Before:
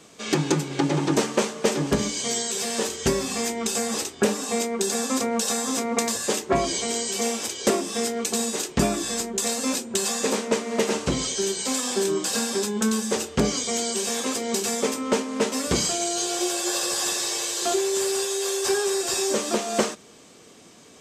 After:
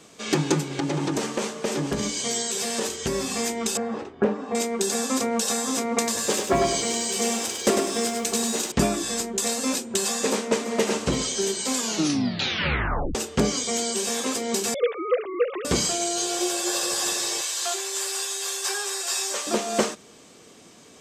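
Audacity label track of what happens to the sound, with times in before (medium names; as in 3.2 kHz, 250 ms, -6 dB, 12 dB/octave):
0.690000	3.270000	compression, threshold -21 dBFS
3.770000	4.550000	low-pass 1.4 kHz
6.070000	8.720000	bit-crushed delay 100 ms, feedback 35%, word length 8-bit, level -5 dB
10.250000	10.890000	echo throw 340 ms, feedback 55%, level -12.5 dB
11.740000	11.740000	tape stop 1.41 s
14.740000	15.650000	formants replaced by sine waves
17.410000	19.470000	high-pass 850 Hz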